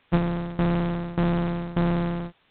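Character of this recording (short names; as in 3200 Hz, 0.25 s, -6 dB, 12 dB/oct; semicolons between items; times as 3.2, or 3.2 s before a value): a buzz of ramps at a fixed pitch in blocks of 256 samples; tremolo saw down 1.7 Hz, depth 90%; a quantiser's noise floor 10-bit, dither triangular; IMA ADPCM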